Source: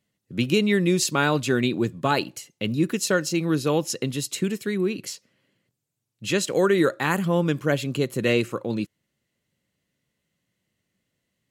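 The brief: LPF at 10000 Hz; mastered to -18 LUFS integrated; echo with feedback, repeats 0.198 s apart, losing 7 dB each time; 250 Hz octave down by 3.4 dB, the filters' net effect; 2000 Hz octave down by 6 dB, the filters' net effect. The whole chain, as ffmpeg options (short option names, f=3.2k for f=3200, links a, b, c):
-af "lowpass=10k,equalizer=f=250:t=o:g=-5,equalizer=f=2k:t=o:g=-8.5,aecho=1:1:198|396|594|792|990:0.447|0.201|0.0905|0.0407|0.0183,volume=7.5dB"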